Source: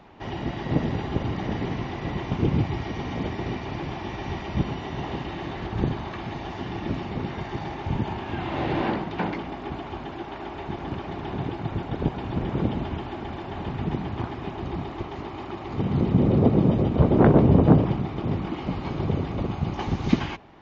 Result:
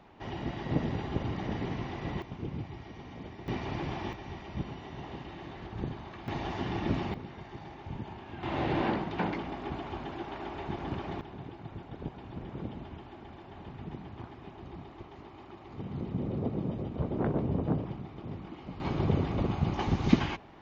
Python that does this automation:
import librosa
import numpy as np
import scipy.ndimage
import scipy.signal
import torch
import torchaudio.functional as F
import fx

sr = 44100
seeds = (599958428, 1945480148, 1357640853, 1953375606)

y = fx.gain(x, sr, db=fx.steps((0.0, -6.0), (2.22, -15.0), (3.48, -3.5), (4.13, -11.0), (6.28, -1.5), (7.14, -13.0), (8.43, -4.0), (11.21, -14.0), (18.8, -2.0)))